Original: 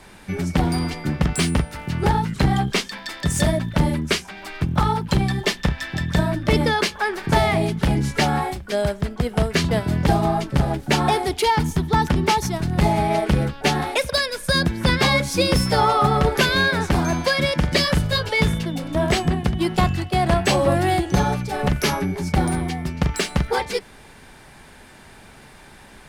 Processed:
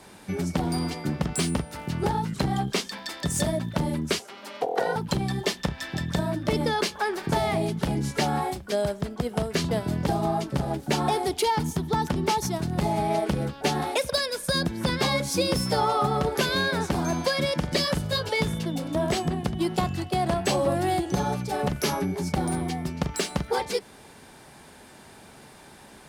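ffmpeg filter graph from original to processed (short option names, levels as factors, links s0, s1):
-filter_complex "[0:a]asettb=1/sr,asplit=3[s0][s1][s2];[s0]atrim=end=4.194[s3];[s1]atrim=start=4.19:end=4.96,asetpts=PTS-STARTPTS,afade=t=in:d=0.004:c=qsin,afade=t=out:st=0.766:d=0.004:c=qsin,aeval=exprs='val(0)*sin(2*PI*490*n/s)':c=same,afreqshift=110[s4];[s2]atrim=start=4.956[s5];[s3][s4]acrossfade=d=0.004:c1=hsin:c2=qsin[s6];[s6][s5]acrossfade=d=0.004:c1=qsin:c2=hsin,equalizer=f=2000:t=o:w=1.6:g=-6,acompressor=threshold=0.0794:ratio=2,highpass=f=160:p=1"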